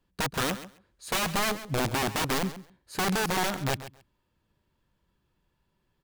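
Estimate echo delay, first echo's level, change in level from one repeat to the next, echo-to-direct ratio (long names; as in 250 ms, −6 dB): 135 ms, −14.0 dB, −16.5 dB, −14.0 dB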